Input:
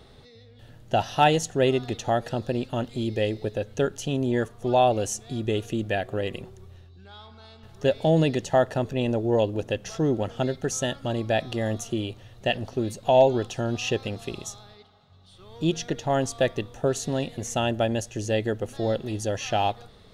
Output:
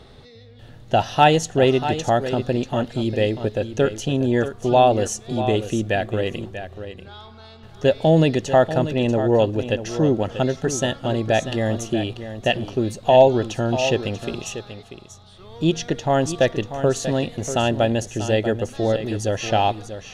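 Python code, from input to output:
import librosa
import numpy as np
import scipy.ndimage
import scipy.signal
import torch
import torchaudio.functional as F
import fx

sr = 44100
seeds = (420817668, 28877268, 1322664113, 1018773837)

y = fx.high_shelf(x, sr, hz=10000.0, db=-8.5)
y = y + 10.0 ** (-11.0 / 20.0) * np.pad(y, (int(639 * sr / 1000.0), 0))[:len(y)]
y = y * librosa.db_to_amplitude(5.0)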